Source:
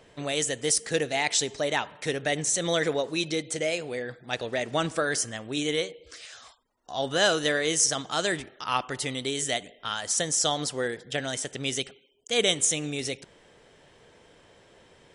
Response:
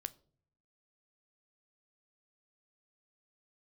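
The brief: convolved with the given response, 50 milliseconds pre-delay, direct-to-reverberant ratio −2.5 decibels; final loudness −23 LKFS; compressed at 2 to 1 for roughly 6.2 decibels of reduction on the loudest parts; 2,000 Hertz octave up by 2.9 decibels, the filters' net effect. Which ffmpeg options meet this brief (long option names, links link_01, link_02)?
-filter_complex "[0:a]equalizer=frequency=2000:width_type=o:gain=3.5,acompressor=threshold=-29dB:ratio=2,asplit=2[link_01][link_02];[1:a]atrim=start_sample=2205,adelay=50[link_03];[link_02][link_03]afir=irnorm=-1:irlink=0,volume=5dB[link_04];[link_01][link_04]amix=inputs=2:normalize=0,volume=3dB"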